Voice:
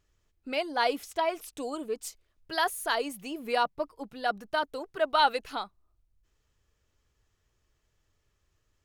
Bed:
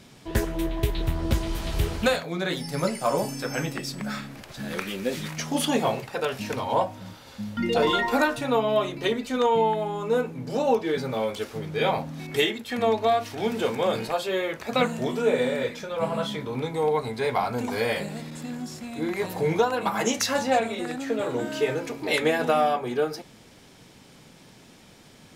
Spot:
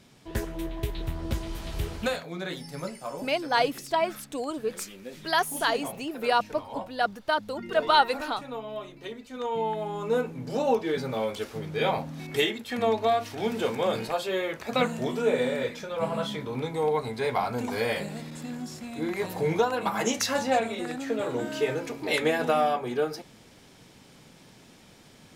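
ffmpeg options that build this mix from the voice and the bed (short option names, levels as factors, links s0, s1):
-filter_complex "[0:a]adelay=2750,volume=1.41[s0];[1:a]volume=1.88,afade=t=out:st=2.4:d=0.82:silence=0.421697,afade=t=in:st=9.31:d=0.73:silence=0.266073[s1];[s0][s1]amix=inputs=2:normalize=0"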